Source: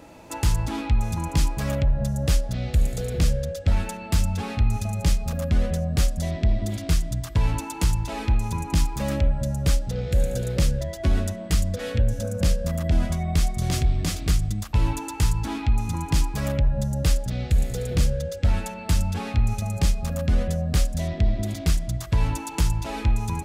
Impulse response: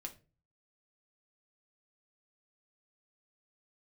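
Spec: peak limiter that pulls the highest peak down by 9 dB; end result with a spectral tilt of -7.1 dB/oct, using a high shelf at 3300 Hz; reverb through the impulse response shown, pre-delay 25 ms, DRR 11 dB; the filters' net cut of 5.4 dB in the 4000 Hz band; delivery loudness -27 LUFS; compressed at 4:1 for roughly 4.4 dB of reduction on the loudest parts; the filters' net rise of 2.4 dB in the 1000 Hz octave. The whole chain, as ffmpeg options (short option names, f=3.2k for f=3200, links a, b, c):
-filter_complex "[0:a]equalizer=f=1k:t=o:g=3.5,highshelf=f=3.3k:g=-5.5,equalizer=f=4k:t=o:g=-3,acompressor=threshold=-20dB:ratio=4,alimiter=limit=-21.5dB:level=0:latency=1,asplit=2[a][b];[1:a]atrim=start_sample=2205,adelay=25[c];[b][c]afir=irnorm=-1:irlink=0,volume=-7.5dB[d];[a][d]amix=inputs=2:normalize=0,volume=4dB"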